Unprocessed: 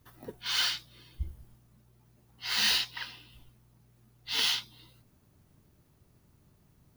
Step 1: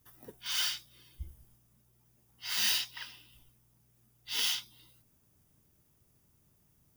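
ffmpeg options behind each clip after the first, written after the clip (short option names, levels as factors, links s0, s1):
-af "highshelf=f=4200:g=11.5,bandreject=f=4200:w=6.8,volume=0.422"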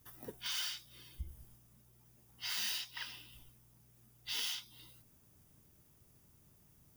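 -af "acompressor=threshold=0.00794:ratio=3,volume=1.41"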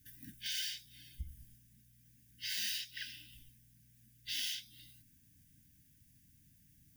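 -af "afftfilt=real='re*(1-between(b*sr/4096,320,1500))':imag='im*(1-between(b*sr/4096,320,1500))':win_size=4096:overlap=0.75"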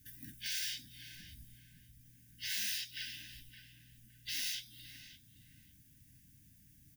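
-filter_complex "[0:a]aeval=exprs='0.0631*(cos(1*acos(clip(val(0)/0.0631,-1,1)))-cos(1*PI/2))+0.00126*(cos(5*acos(clip(val(0)/0.0631,-1,1)))-cos(5*PI/2))+0.000355*(cos(6*acos(clip(val(0)/0.0631,-1,1)))-cos(6*PI/2))+0.000562*(cos(8*acos(clip(val(0)/0.0631,-1,1)))-cos(8*PI/2))':c=same,afftfilt=real='re*lt(hypot(re,im),0.0316)':imag='im*lt(hypot(re,im),0.0316)':win_size=1024:overlap=0.75,asplit=2[s0][s1];[s1]adelay=565,lowpass=f=1700:p=1,volume=0.376,asplit=2[s2][s3];[s3]adelay=565,lowpass=f=1700:p=1,volume=0.34,asplit=2[s4][s5];[s5]adelay=565,lowpass=f=1700:p=1,volume=0.34,asplit=2[s6][s7];[s7]adelay=565,lowpass=f=1700:p=1,volume=0.34[s8];[s0][s2][s4][s6][s8]amix=inputs=5:normalize=0,volume=1.26"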